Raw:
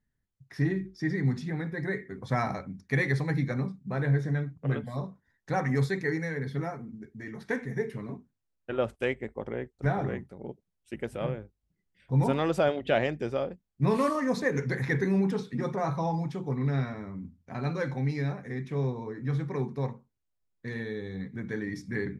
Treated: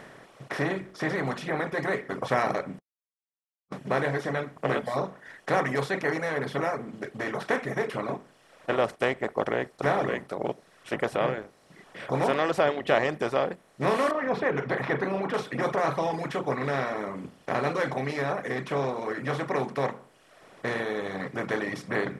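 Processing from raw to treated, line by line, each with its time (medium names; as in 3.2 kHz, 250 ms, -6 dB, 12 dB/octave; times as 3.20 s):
2.79–3.72 s: mute
14.11–15.34 s: distance through air 410 m
whole clip: spectral levelling over time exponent 0.4; tone controls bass -12 dB, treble -1 dB; reverb removal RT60 0.96 s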